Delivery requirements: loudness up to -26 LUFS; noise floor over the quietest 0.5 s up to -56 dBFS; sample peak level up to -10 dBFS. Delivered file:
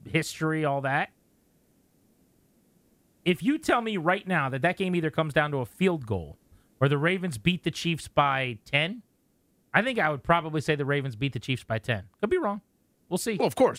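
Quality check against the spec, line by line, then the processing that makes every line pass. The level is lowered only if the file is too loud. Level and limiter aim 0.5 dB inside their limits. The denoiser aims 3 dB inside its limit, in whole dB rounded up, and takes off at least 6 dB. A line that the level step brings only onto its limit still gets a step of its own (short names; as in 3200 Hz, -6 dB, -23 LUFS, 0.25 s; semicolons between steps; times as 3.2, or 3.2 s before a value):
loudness -27.0 LUFS: OK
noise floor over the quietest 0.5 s -68 dBFS: OK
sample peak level -5.0 dBFS: fail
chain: limiter -10.5 dBFS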